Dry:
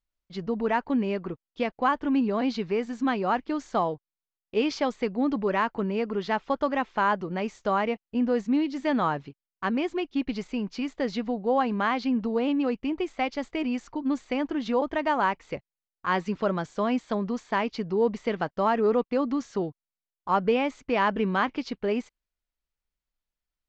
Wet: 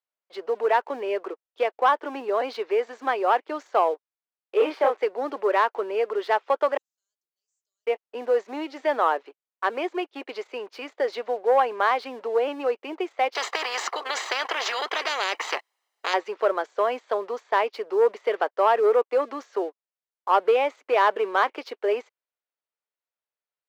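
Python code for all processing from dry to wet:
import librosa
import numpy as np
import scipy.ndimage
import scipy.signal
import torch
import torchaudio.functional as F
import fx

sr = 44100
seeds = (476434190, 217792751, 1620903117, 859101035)

y = fx.chain(x, sr, fx.delta_hold(step_db=-42.5),
    fx.bandpass_edges(low_hz=120.0, high_hz=2400.0),
    fx.doubler(ms=29.0, db=-2.0), at=(4.57, 4.98))
y = fx.chain(y, sr, fx.cheby2_highpass(hz=2300.0, order=4, stop_db=80),
    fx.leveller(passes=3), at=(6.77, 7.87))
y = fx.chain(y, sr, fx.comb(ms=1.0, depth=0.5),
    fx.spectral_comp(ratio=10.0), at=(13.35, 16.14))
y = fx.lowpass(y, sr, hz=1900.0, slope=6)
y = fx.leveller(y, sr, passes=1)
y = scipy.signal.sosfilt(scipy.signal.butter(6, 400.0, 'highpass', fs=sr, output='sos'), y)
y = F.gain(torch.from_numpy(y), 3.0).numpy()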